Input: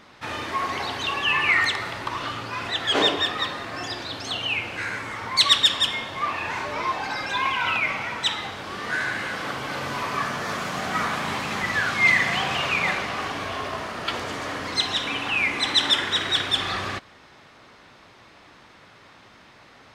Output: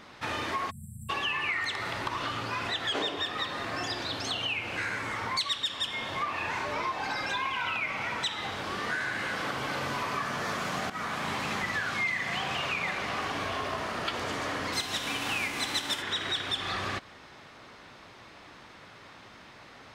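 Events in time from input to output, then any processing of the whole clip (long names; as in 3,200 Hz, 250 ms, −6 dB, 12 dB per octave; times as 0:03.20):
0:00.70–0:01.10: time-frequency box erased 220–7,400 Hz
0:10.90–0:11.46: fade in linear, from −13.5 dB
0:14.72–0:16.01: spectral envelope flattened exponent 0.6
whole clip: downward compressor 5 to 1, threshold −29 dBFS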